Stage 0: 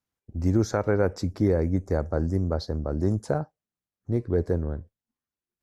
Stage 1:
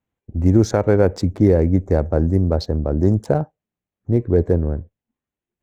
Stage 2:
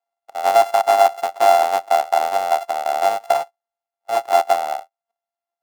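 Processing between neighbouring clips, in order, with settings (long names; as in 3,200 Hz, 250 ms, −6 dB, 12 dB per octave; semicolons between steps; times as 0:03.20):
adaptive Wiener filter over 9 samples; parametric band 1,300 Hz −6 dB 0.9 octaves; level +8.5 dB
samples sorted by size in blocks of 64 samples; high-pass with resonance 770 Hz, resonance Q 8.4; every ending faded ahead of time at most 570 dB per second; level −6.5 dB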